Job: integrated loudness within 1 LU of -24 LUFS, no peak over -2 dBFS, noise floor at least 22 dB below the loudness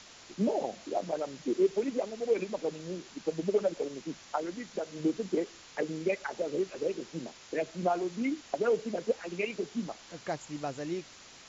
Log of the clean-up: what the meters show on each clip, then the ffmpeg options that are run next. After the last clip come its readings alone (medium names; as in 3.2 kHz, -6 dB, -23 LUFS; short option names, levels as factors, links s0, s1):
noise floor -53 dBFS; noise floor target -56 dBFS; loudness -33.5 LUFS; peak level -17.0 dBFS; loudness target -24.0 LUFS
-> -af "afftdn=nr=6:nf=-53"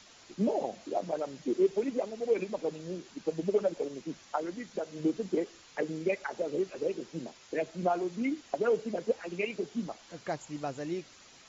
noise floor -56 dBFS; loudness -33.5 LUFS; peak level -17.0 dBFS; loudness target -24.0 LUFS
-> -af "volume=2.99"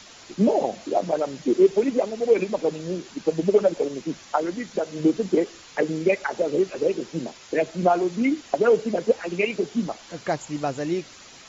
loudness -24.0 LUFS; peak level -7.5 dBFS; noise floor -47 dBFS